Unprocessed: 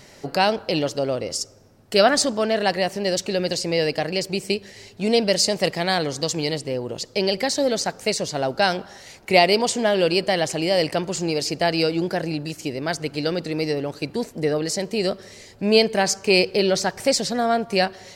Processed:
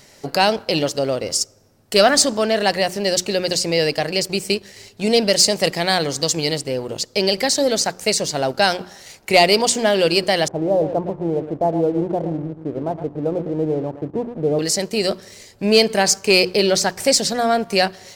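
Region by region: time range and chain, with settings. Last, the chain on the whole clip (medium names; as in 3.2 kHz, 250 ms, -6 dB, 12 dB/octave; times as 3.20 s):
10.48–14.59 s: steep low-pass 1 kHz + delay 115 ms -10.5 dB
whole clip: treble shelf 5.2 kHz +7 dB; hum notches 60/120/180/240/300/360 Hz; waveshaping leveller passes 1; trim -1 dB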